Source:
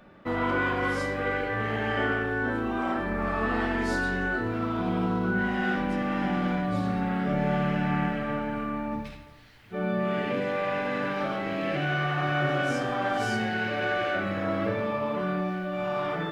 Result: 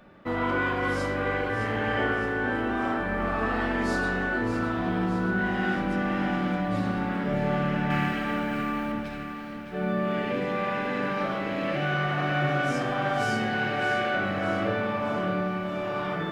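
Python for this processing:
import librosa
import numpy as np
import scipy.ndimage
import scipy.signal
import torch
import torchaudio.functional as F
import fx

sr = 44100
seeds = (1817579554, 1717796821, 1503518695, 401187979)

p1 = fx.high_shelf(x, sr, hz=2400.0, db=11.5, at=(7.9, 8.92))
y = p1 + fx.echo_feedback(p1, sr, ms=614, feedback_pct=57, wet_db=-9, dry=0)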